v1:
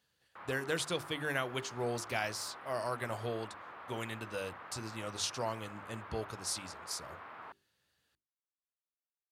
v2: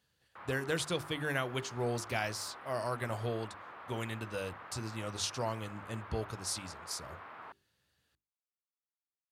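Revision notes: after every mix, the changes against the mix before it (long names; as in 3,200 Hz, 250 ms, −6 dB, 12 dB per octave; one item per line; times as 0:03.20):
speech: add low-shelf EQ 180 Hz +7 dB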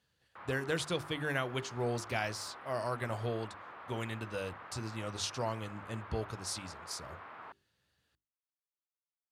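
master: add high-shelf EQ 9,300 Hz −7 dB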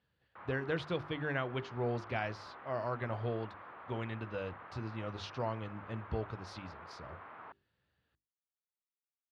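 master: add high-frequency loss of the air 290 metres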